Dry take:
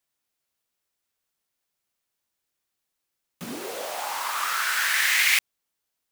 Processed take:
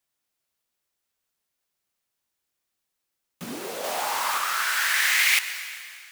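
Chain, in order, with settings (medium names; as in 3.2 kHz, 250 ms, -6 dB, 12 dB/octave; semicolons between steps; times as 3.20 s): on a send at -11 dB: reverberation RT60 2.3 s, pre-delay 103 ms; 3.84–4.38 s: on the sum: waveshaping leveller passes 1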